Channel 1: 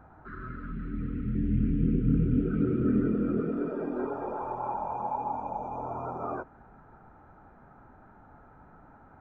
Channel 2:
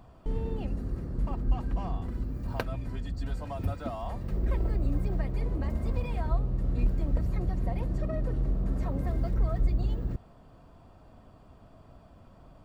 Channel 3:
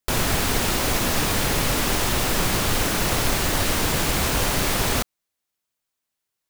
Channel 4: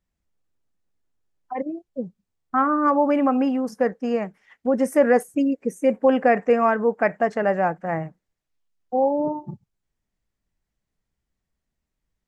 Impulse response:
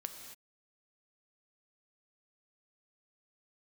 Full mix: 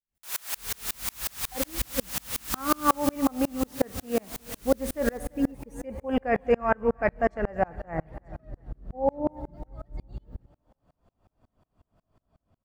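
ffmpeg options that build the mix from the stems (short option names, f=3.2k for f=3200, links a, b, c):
-filter_complex "[0:a]adelay=1000,volume=-15.5dB[a];[1:a]dynaudnorm=f=290:g=7:m=3.5dB,adelay=300,volume=-10.5dB,asplit=2[b][c];[c]volume=-7dB[d];[2:a]highpass=1k,highshelf=f=7k:g=10.5,volume=16.5dB,asoftclip=hard,volume=-16.5dB,adelay=150,volume=-5dB,afade=t=out:st=2.75:d=0.52:silence=0.398107,asplit=2[e][f];[f]volume=-12dB[g];[3:a]volume=-0.5dB,asplit=3[h][i][j];[i]volume=-6.5dB[k];[j]volume=-15.5dB[l];[4:a]atrim=start_sample=2205[m];[d][k]amix=inputs=2:normalize=0[n];[n][m]afir=irnorm=-1:irlink=0[o];[g][l]amix=inputs=2:normalize=0,aecho=0:1:341|682|1023|1364|1705|2046:1|0.4|0.16|0.064|0.0256|0.0102[p];[a][b][e][h][o][p]amix=inputs=6:normalize=0,aeval=exprs='val(0)*pow(10,-34*if(lt(mod(-5.5*n/s,1),2*abs(-5.5)/1000),1-mod(-5.5*n/s,1)/(2*abs(-5.5)/1000),(mod(-5.5*n/s,1)-2*abs(-5.5)/1000)/(1-2*abs(-5.5)/1000))/20)':c=same"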